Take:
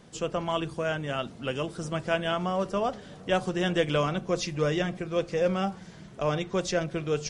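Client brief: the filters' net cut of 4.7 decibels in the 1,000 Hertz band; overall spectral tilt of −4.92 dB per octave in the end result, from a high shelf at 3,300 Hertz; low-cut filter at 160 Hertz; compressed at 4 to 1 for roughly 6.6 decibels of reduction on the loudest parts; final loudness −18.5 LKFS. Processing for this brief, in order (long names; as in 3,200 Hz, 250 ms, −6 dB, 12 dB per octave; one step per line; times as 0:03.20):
high-pass filter 160 Hz
parametric band 1,000 Hz −6 dB
high-shelf EQ 3,300 Hz −7.5 dB
downward compressor 4 to 1, threshold −30 dBFS
level +17 dB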